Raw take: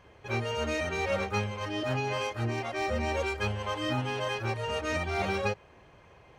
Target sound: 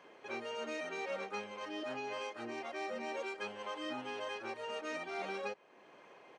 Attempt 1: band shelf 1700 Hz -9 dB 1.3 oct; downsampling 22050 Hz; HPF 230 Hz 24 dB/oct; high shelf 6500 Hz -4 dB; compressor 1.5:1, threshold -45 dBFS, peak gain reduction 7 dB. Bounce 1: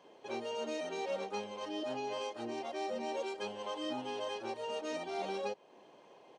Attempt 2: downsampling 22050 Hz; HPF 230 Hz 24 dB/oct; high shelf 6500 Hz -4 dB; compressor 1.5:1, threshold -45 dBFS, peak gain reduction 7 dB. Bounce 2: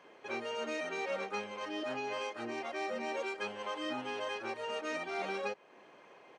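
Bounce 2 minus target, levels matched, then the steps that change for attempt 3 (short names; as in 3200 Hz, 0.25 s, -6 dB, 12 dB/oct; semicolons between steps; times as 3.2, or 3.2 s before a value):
compressor: peak gain reduction -3 dB
change: compressor 1.5:1, threshold -54.5 dBFS, peak gain reduction 10.5 dB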